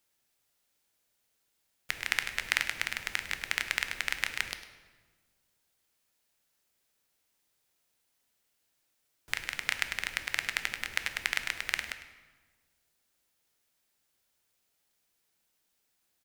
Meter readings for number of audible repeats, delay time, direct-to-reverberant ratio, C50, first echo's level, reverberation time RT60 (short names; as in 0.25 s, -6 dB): 1, 0.103 s, 8.0 dB, 9.5 dB, -15.5 dB, 1.4 s